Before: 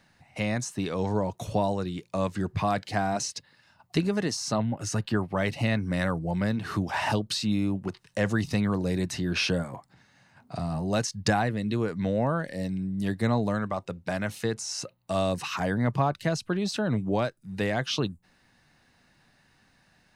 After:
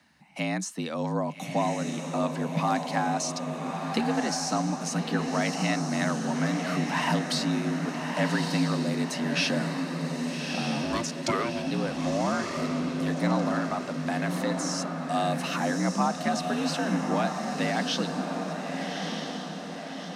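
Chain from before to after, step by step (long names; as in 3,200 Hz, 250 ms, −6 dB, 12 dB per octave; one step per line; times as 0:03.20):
parametric band 320 Hz −8.5 dB 0.64 octaves
0:10.83–0:11.67: ring modulation 400 Hz
feedback delay with all-pass diffusion 1,223 ms, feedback 54%, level −4 dB
frequency shifter +62 Hz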